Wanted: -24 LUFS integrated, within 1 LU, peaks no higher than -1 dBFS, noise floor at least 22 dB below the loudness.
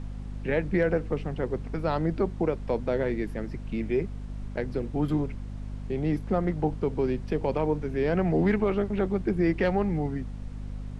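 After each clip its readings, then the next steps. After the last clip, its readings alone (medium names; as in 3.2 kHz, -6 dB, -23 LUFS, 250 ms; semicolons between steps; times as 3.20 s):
hum 50 Hz; highest harmonic 250 Hz; hum level -34 dBFS; noise floor -38 dBFS; noise floor target -51 dBFS; loudness -28.5 LUFS; peak level -14.0 dBFS; loudness target -24.0 LUFS
-> de-hum 50 Hz, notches 5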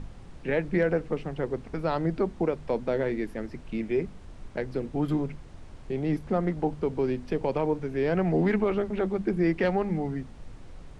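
hum not found; noise floor -46 dBFS; noise floor target -51 dBFS
-> noise print and reduce 6 dB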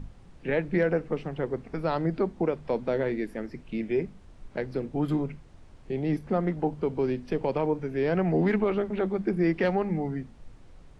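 noise floor -51 dBFS; loudness -28.5 LUFS; peak level -14.0 dBFS; loudness target -24.0 LUFS
-> trim +4.5 dB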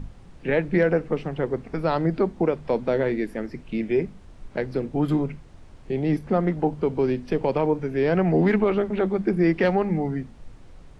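loudness -24.0 LUFS; peak level -9.5 dBFS; noise floor -47 dBFS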